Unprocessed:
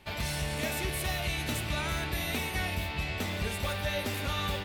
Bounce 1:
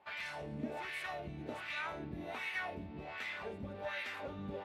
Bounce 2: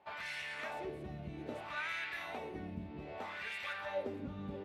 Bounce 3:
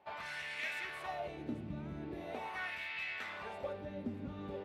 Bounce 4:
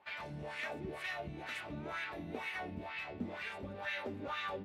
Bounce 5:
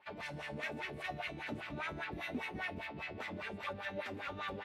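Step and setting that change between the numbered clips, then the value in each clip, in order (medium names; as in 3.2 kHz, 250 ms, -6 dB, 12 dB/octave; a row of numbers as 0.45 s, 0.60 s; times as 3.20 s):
wah-wah, rate: 1.3 Hz, 0.63 Hz, 0.42 Hz, 2.1 Hz, 5 Hz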